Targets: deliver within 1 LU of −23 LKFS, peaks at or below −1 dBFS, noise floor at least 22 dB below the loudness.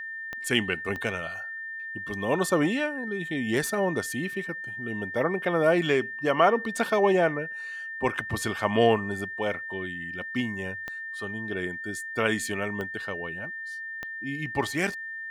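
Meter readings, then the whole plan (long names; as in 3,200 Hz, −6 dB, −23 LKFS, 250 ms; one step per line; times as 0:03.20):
number of clicks 5; interfering tone 1,800 Hz; level of the tone −34 dBFS; integrated loudness −28.0 LKFS; sample peak −7.0 dBFS; target loudness −23.0 LKFS
→ click removal
notch filter 1,800 Hz, Q 30
level +5 dB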